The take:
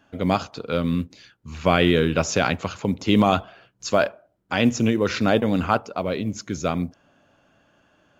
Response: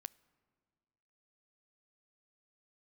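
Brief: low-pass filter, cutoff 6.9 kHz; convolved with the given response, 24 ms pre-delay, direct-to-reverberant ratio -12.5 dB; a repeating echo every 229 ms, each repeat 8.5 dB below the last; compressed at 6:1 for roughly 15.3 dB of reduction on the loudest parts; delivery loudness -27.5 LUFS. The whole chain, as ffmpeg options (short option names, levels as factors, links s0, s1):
-filter_complex "[0:a]lowpass=6900,acompressor=threshold=0.0316:ratio=6,aecho=1:1:229|458|687|916:0.376|0.143|0.0543|0.0206,asplit=2[s0][s1];[1:a]atrim=start_sample=2205,adelay=24[s2];[s1][s2]afir=irnorm=-1:irlink=0,volume=7.5[s3];[s0][s3]amix=inputs=2:normalize=0,volume=0.531"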